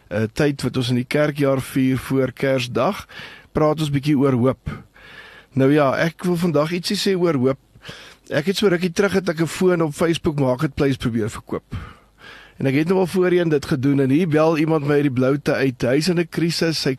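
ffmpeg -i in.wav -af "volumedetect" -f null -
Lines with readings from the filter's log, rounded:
mean_volume: -19.6 dB
max_volume: -5.8 dB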